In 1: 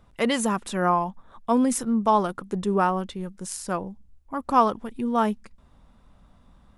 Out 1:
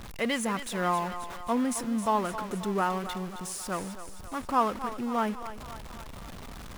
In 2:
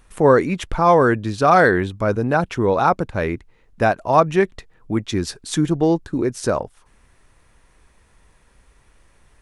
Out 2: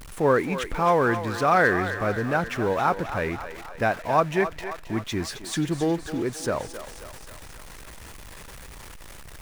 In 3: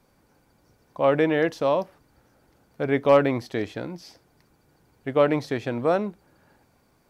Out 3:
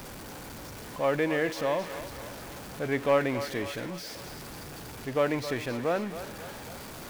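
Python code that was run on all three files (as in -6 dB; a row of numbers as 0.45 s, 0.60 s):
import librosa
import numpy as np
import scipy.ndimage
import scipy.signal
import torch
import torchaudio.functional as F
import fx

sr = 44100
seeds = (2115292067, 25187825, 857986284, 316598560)

y = x + 0.5 * 10.0 ** (-29.0 / 20.0) * np.sign(x)
y = fx.echo_thinned(y, sr, ms=267, feedback_pct=66, hz=450.0, wet_db=-10.0)
y = fx.dynamic_eq(y, sr, hz=2000.0, q=1.2, threshold_db=-36.0, ratio=4.0, max_db=5)
y = F.gain(torch.from_numpy(y), -8.0).numpy()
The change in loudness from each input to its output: -5.5 LU, -6.0 LU, -7.5 LU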